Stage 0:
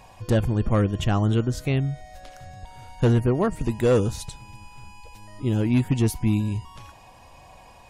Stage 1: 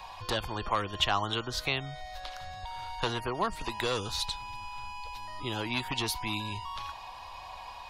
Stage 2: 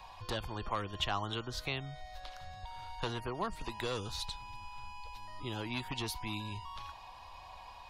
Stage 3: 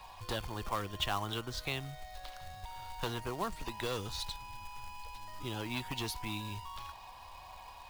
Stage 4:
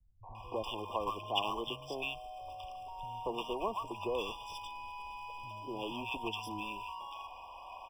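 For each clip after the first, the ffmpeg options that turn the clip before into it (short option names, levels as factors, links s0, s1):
-filter_complex "[0:a]acrossover=split=280|3000[s0][s1][s2];[s1]acompressor=threshold=0.0398:ratio=6[s3];[s0][s3][s2]amix=inputs=3:normalize=0,equalizer=f=125:t=o:w=1:g=-9,equalizer=f=250:t=o:w=1:g=-9,equalizer=f=500:t=o:w=1:g=-5,equalizer=f=1000:t=o:w=1:g=10,equalizer=f=4000:t=o:w=1:g=12,equalizer=f=8000:t=o:w=1:g=-7,acrossover=split=300|1200[s4][s5][s6];[s4]acompressor=threshold=0.0126:ratio=6[s7];[s7][s5][s6]amix=inputs=3:normalize=0"
-af "lowshelf=f=350:g=5,volume=0.422"
-af "acrusher=bits=3:mode=log:mix=0:aa=0.000001"
-filter_complex "[0:a]bass=f=250:g=-14,treble=f=4000:g=-14,acrossover=split=150|1000[s0][s1][s2];[s1]adelay=230[s3];[s2]adelay=350[s4];[s0][s3][s4]amix=inputs=3:normalize=0,afftfilt=real='re*eq(mod(floor(b*sr/1024/1200),2),0)':imag='im*eq(mod(floor(b*sr/1024/1200),2),0)':win_size=1024:overlap=0.75,volume=1.88"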